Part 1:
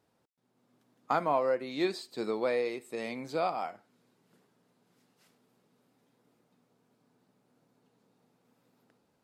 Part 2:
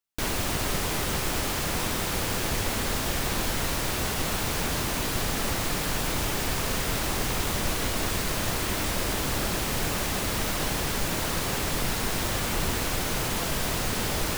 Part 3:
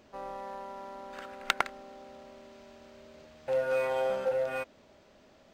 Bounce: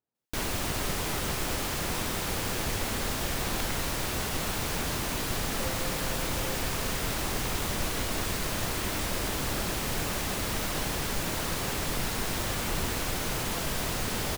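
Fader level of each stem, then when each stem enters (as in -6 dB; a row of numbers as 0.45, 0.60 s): -19.5, -3.0, -14.0 dB; 0.00, 0.15, 2.10 s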